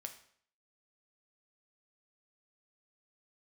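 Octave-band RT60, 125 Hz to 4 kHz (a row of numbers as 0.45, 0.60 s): 0.60, 0.60, 0.60, 0.60, 0.55, 0.55 s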